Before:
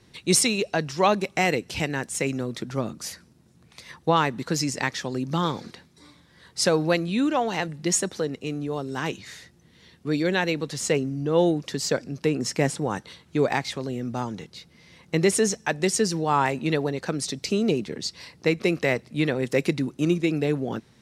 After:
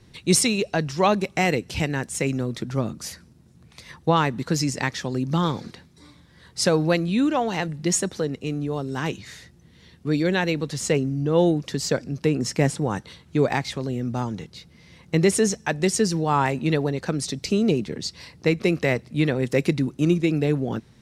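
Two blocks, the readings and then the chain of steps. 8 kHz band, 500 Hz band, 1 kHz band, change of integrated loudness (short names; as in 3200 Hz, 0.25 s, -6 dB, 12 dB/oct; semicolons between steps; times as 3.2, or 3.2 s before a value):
0.0 dB, +1.0 dB, +0.5 dB, +1.5 dB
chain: low shelf 160 Hz +9 dB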